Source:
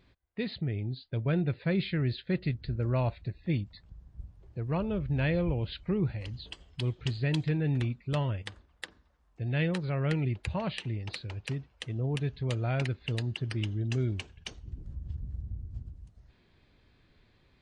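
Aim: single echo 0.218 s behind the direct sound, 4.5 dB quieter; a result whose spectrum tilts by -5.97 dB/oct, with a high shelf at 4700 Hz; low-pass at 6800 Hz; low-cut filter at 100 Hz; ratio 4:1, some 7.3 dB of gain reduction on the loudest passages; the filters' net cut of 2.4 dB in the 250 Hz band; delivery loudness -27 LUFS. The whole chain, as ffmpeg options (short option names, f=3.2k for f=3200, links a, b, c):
-af "highpass=100,lowpass=6.8k,equalizer=f=250:t=o:g=-3.5,highshelf=f=4.7k:g=-6.5,acompressor=threshold=-35dB:ratio=4,aecho=1:1:218:0.596,volume=12dB"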